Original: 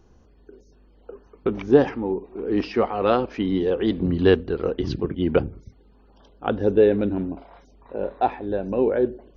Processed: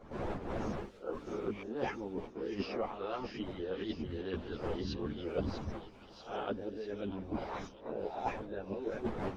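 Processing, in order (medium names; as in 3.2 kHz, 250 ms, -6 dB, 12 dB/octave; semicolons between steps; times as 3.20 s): reverse spectral sustain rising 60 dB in 0.50 s; recorder AGC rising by 18 dB/s; wind noise 560 Hz -34 dBFS; reverse; compression 16:1, threshold -29 dBFS, peak gain reduction 21.5 dB; reverse; harmonic-percussive split harmonic -15 dB; gate -44 dBFS, range -7 dB; feedback echo behind a high-pass 644 ms, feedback 57%, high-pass 3.8 kHz, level -4 dB; three-phase chorus; trim +3.5 dB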